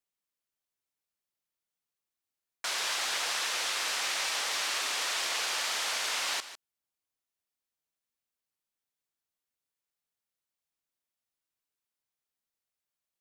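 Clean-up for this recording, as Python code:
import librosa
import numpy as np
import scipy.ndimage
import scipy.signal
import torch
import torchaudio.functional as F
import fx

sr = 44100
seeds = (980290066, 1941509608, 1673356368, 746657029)

y = fx.fix_declip(x, sr, threshold_db=-22.0)
y = fx.fix_echo_inverse(y, sr, delay_ms=151, level_db=-13.5)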